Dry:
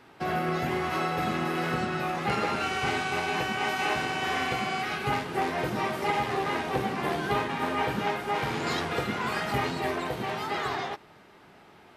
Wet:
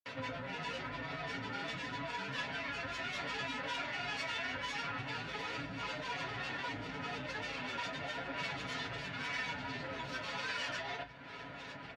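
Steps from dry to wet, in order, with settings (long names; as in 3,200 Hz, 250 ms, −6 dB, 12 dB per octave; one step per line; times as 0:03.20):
soft clipping −31 dBFS, distortion −9 dB
low-pass filter 4,900 Hz 12 dB per octave
granular cloud, pitch spread up and down by 7 semitones
convolution reverb RT60 0.10 s, pre-delay 3 ms, DRR 1.5 dB
downward compressor 3 to 1, threshold −53 dBFS, peak gain reduction 24 dB
spectral tilt +2 dB per octave
comb filter 7.1 ms, depth 86%
level +5.5 dB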